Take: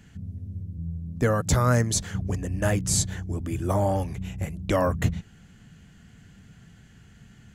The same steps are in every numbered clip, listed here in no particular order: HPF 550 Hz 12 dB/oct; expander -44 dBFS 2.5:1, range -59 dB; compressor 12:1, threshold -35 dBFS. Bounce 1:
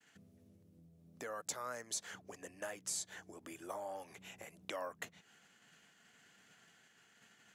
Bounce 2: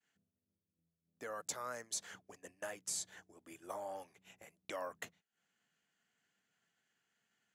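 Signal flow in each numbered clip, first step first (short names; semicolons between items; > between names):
expander > compressor > HPF; compressor > HPF > expander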